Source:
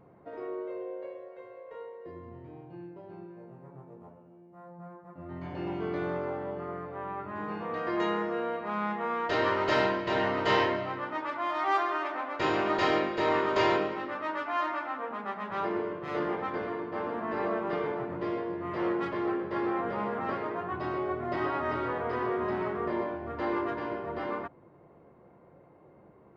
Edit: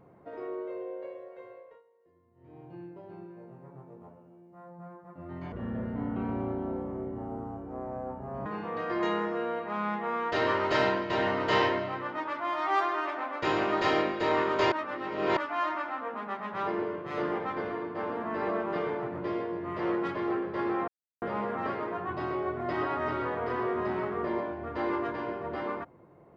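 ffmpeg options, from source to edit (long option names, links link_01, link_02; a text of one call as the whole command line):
ffmpeg -i in.wav -filter_complex "[0:a]asplit=8[link_01][link_02][link_03][link_04][link_05][link_06][link_07][link_08];[link_01]atrim=end=1.82,asetpts=PTS-STARTPTS,afade=type=out:start_time=1.51:duration=0.31:silence=0.0841395[link_09];[link_02]atrim=start=1.82:end=2.35,asetpts=PTS-STARTPTS,volume=-21.5dB[link_10];[link_03]atrim=start=2.35:end=5.524,asetpts=PTS-STARTPTS,afade=type=in:duration=0.31:silence=0.0841395[link_11];[link_04]atrim=start=5.52:end=7.43,asetpts=PTS-STARTPTS,asetrate=28665,aresample=44100,atrim=end_sample=129586,asetpts=PTS-STARTPTS[link_12];[link_05]atrim=start=7.426:end=13.692[link_13];[link_06]atrim=start=13.688:end=14.342,asetpts=PTS-STARTPTS,areverse[link_14];[link_07]atrim=start=14.338:end=19.85,asetpts=PTS-STARTPTS,afade=type=out:start_time=5.508:duration=0.004:curve=hsin,apad=pad_dur=0.34[link_15];[link_08]atrim=start=19.85,asetpts=PTS-STARTPTS,afade=type=in:duration=0.004:curve=hsin[link_16];[link_09][link_10][link_11]concat=n=3:v=0:a=1[link_17];[link_17][link_12]acrossfade=duration=0.004:curve1=hsin:curve2=hsin[link_18];[link_18][link_13]acrossfade=duration=0.004:curve1=hsin:curve2=hsin[link_19];[link_19][link_14]acrossfade=duration=0.004:curve1=hsin:curve2=hsin[link_20];[link_15][link_16]concat=n=2:v=0:a=1[link_21];[link_20][link_21]acrossfade=duration=0.004:curve1=hsin:curve2=hsin" out.wav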